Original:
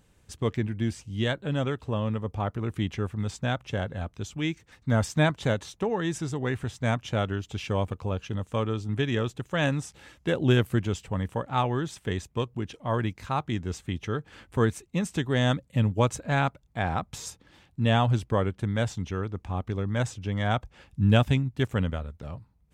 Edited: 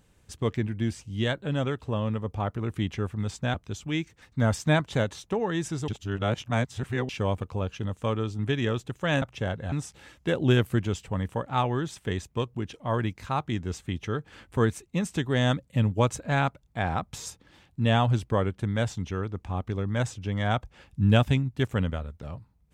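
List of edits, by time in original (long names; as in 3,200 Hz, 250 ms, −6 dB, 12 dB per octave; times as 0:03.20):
0:03.54–0:04.04: move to 0:09.72
0:06.38–0:07.59: reverse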